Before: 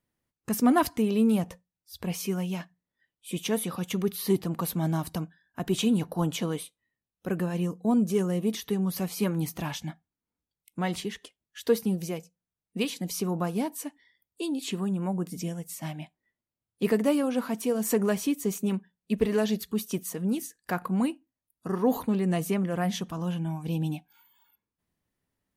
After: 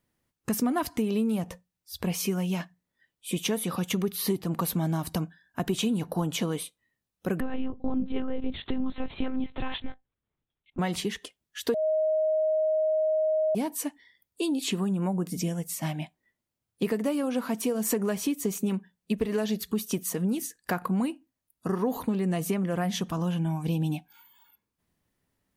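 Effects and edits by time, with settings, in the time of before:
7.40–10.79 s: monotone LPC vocoder at 8 kHz 260 Hz
11.74–13.55 s: bleep 626 Hz -20.5 dBFS
whole clip: compression, threshold -29 dBFS; trim +5 dB

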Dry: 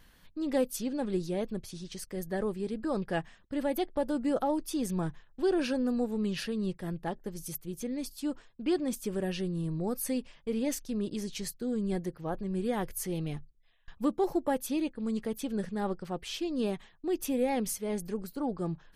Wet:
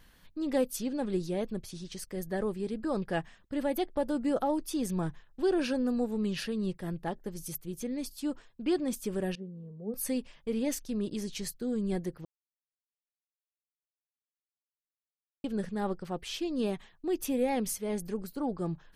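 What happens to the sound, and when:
9.35–9.94 s: two resonant band-passes 310 Hz, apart 1 oct
12.25–15.44 s: mute

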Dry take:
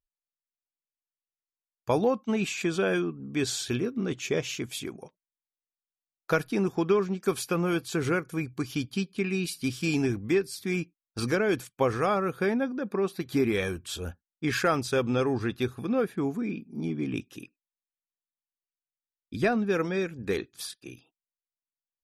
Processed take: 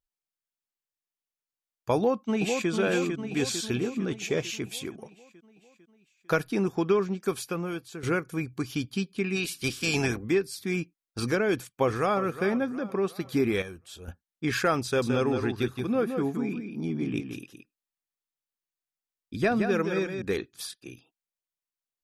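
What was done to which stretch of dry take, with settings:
1.96–2.70 s: echo throw 450 ms, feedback 60%, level -5 dB
7.08–8.03 s: fade out, to -13 dB
9.35–10.23 s: spectral peaks clipped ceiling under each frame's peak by 15 dB
11.51–12.21 s: echo throw 360 ms, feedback 50%, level -14 dB
13.62–14.08 s: gain -9.5 dB
14.85–20.22 s: delay 170 ms -6.5 dB

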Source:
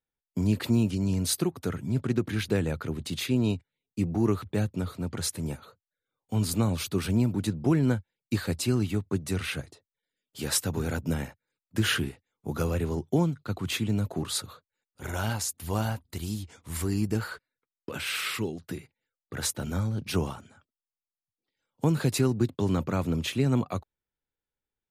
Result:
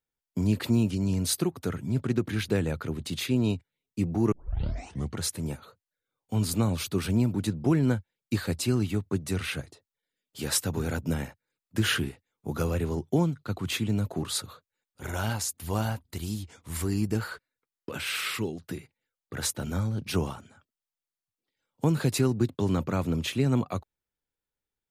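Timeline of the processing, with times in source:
4.32 s: tape start 0.86 s

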